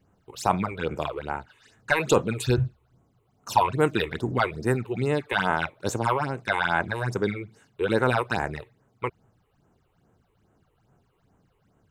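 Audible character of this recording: phasing stages 8, 2.4 Hz, lowest notch 190–4700 Hz

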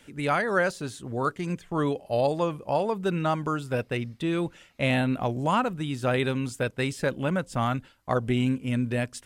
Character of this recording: noise floor -57 dBFS; spectral tilt -5.5 dB/oct

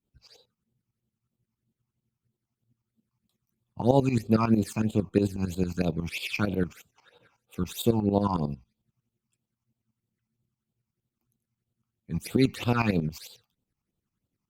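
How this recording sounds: phasing stages 8, 3.1 Hz, lowest notch 470–1900 Hz; tremolo saw up 11 Hz, depth 80%; Opus

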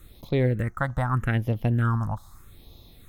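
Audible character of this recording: phasing stages 4, 0.81 Hz, lowest notch 390–1500 Hz

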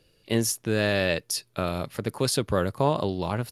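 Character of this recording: noise floor -65 dBFS; spectral tilt -4.5 dB/oct

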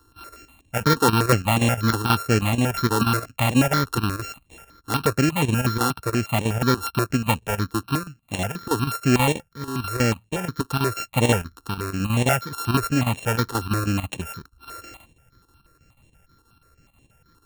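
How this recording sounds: a buzz of ramps at a fixed pitch in blocks of 32 samples; chopped level 6.2 Hz, depth 65%, duty 80%; notches that jump at a steady rate 8.3 Hz 620–4900 Hz

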